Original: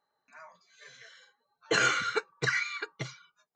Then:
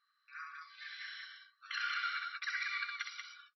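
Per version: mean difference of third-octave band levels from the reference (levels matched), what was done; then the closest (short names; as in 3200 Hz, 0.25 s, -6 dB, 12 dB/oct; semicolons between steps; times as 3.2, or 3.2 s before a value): 11.5 dB: compressor 6:1, threshold -41 dBFS, peak gain reduction 18 dB; brick-wall FIR band-pass 1100–5800 Hz; on a send: loudspeakers at several distances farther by 22 m -4 dB, 64 m -3 dB; on the sum: gain +4 dB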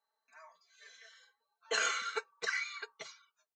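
3.5 dB: HPF 600 Hz 12 dB/oct; bell 1500 Hz -3 dB 2.6 oct; comb 4.5 ms, depth 73%; gain -5 dB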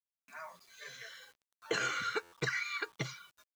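7.5 dB: compressor 4:1, threshold -37 dBFS, peak gain reduction 13.5 dB; bit-crush 11-bit; stuck buffer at 2.22, samples 512, times 8; gain +3.5 dB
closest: second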